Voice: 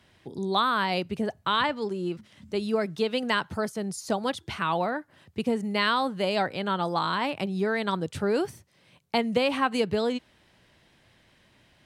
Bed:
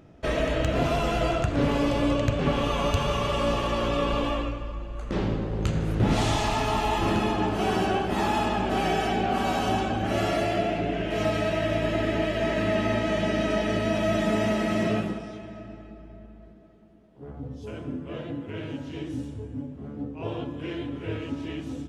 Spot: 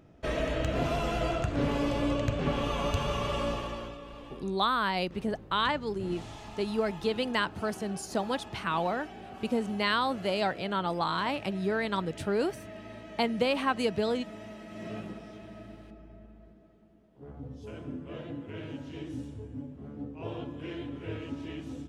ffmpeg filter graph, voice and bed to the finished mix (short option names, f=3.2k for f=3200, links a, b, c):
-filter_complex "[0:a]adelay=4050,volume=-3dB[a];[1:a]volume=9.5dB,afade=t=out:st=3.36:d=0.63:silence=0.177828,afade=t=in:st=14.7:d=0.87:silence=0.188365[b];[a][b]amix=inputs=2:normalize=0"